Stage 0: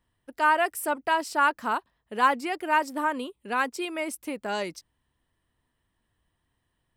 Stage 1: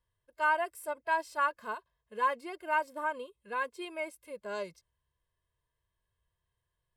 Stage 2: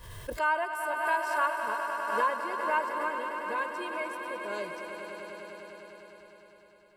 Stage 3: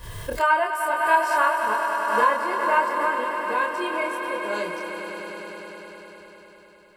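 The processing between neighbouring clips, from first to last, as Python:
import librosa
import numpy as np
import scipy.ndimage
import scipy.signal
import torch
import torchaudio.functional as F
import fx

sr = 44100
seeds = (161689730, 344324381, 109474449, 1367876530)

y1 = x + 0.73 * np.pad(x, (int(1.9 * sr / 1000.0), 0))[:len(x)]
y1 = fx.hpss(y1, sr, part='percussive', gain_db=-12)
y1 = y1 * librosa.db_to_amplitude(-8.0)
y2 = fx.echo_swell(y1, sr, ms=101, loudest=5, wet_db=-10)
y2 = fx.pre_swell(y2, sr, db_per_s=52.0)
y3 = fx.doubler(y2, sr, ms=28.0, db=-3.0)
y3 = y3 * librosa.db_to_amplitude(6.5)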